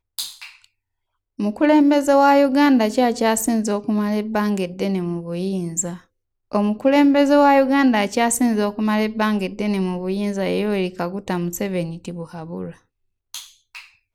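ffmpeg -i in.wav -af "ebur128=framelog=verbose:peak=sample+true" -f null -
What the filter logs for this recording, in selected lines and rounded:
Integrated loudness:
  I:         -19.0 LUFS
  Threshold: -29.9 LUFS
Loudness range:
  LRA:         8.1 LU
  Threshold: -39.5 LUFS
  LRA low:   -25.3 LUFS
  LRA high:  -17.2 LUFS
Sample peak:
  Peak:       -3.6 dBFS
True peak:
  Peak:       -3.6 dBFS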